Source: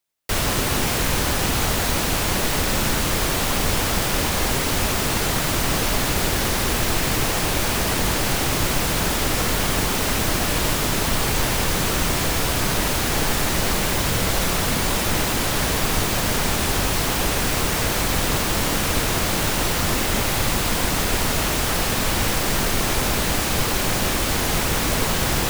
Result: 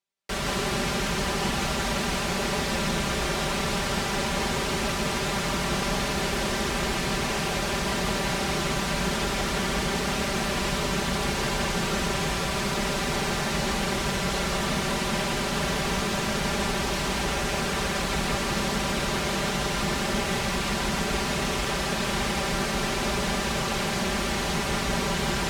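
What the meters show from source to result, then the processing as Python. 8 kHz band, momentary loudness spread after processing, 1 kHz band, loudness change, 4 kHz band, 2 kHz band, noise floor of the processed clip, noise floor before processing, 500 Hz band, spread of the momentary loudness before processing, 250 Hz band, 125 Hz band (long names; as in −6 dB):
−8.5 dB, 0 LU, −3.5 dB, −5.5 dB, −5.0 dB, −4.0 dB, −28 dBFS, −23 dBFS, −3.0 dB, 0 LU, −3.0 dB, −6.0 dB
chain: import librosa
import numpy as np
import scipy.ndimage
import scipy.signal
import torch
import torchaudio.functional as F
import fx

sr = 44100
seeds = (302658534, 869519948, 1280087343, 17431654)

y = scipy.signal.sosfilt(scipy.signal.butter(2, 47.0, 'highpass', fs=sr, output='sos'), x)
y = fx.air_absorb(y, sr, metres=55.0)
y = y + 0.7 * np.pad(y, (int(5.1 * sr / 1000.0), 0))[:len(y)]
y = y + 10.0 ** (-4.0 / 20.0) * np.pad(y, (int(168 * sr / 1000.0), 0))[:len(y)]
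y = y * 10.0 ** (-6.5 / 20.0)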